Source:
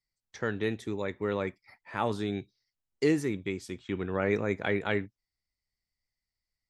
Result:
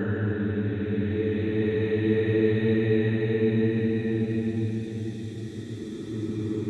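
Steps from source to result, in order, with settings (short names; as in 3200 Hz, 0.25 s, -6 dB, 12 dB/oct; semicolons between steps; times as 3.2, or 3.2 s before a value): tilt -2.5 dB/oct; Paulstretch 20×, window 0.25 s, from 0.53; gain +2 dB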